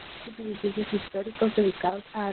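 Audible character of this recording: a quantiser's noise floor 6-bit, dither triangular; random-step tremolo 3.7 Hz, depth 75%; Opus

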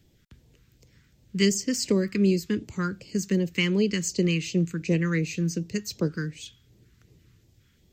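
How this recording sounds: phasing stages 2, 2.7 Hz, lowest notch 620–1400 Hz

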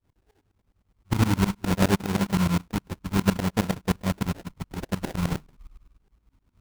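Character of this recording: phasing stages 6, 0.6 Hz, lowest notch 530–1200 Hz; aliases and images of a low sample rate 1.2 kHz, jitter 20%; tremolo saw up 9.7 Hz, depth 95%

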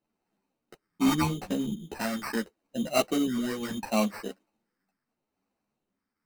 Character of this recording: phasing stages 4, 0.77 Hz, lowest notch 660–3100 Hz; aliases and images of a low sample rate 3.4 kHz, jitter 0%; a shimmering, thickened sound

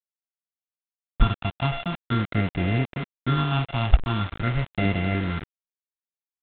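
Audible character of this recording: a buzz of ramps at a fixed pitch in blocks of 64 samples; phasing stages 6, 0.46 Hz, lowest notch 450–1100 Hz; a quantiser's noise floor 6-bit, dither none; G.726

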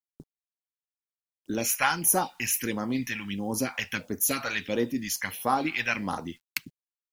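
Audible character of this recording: a quantiser's noise floor 10-bit, dither none; phasing stages 2, 1.5 Hz, lowest notch 310–2400 Hz

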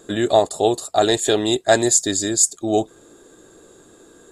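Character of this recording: noise floor -51 dBFS; spectral tilt -2.5 dB/octave

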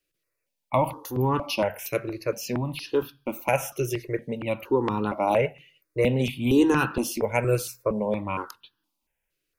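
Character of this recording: notches that jump at a steady rate 4.3 Hz 240–2200 Hz

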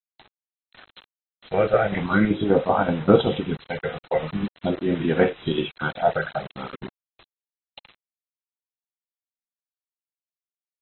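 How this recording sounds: chopped level 5.2 Hz, depth 60%, duty 70%; phasing stages 6, 0.44 Hz, lowest notch 250–4500 Hz; a quantiser's noise floor 6-bit, dither none; AAC

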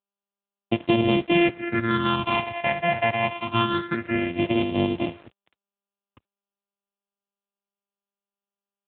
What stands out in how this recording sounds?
a buzz of ramps at a fixed pitch in blocks of 128 samples; phasing stages 6, 0.26 Hz, lowest notch 330–1500 Hz; a quantiser's noise floor 8-bit, dither none; AMR-NB

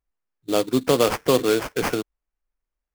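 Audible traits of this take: aliases and images of a low sample rate 3.9 kHz, jitter 20%

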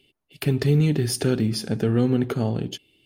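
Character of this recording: noise floor -75 dBFS; spectral tilt -7.0 dB/octave

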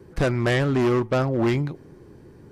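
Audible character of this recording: noise floor -48 dBFS; spectral tilt -6.0 dB/octave

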